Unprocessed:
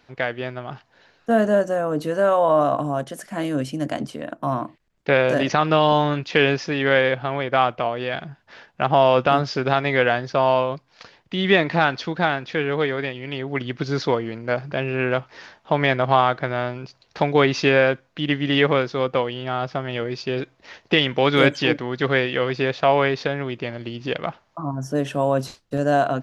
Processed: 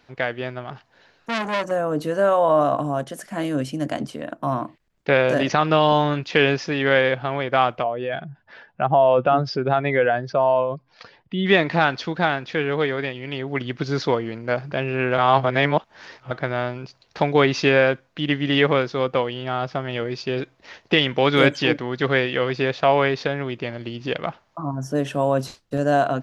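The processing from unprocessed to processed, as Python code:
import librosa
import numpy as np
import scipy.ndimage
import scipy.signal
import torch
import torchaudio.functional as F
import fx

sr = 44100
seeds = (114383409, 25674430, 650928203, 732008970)

y = fx.transformer_sat(x, sr, knee_hz=2500.0, at=(0.64, 1.71))
y = fx.spec_expand(y, sr, power=1.5, at=(7.82, 11.45), fade=0.02)
y = fx.edit(y, sr, fx.reverse_span(start_s=15.18, length_s=1.13), tone=tone)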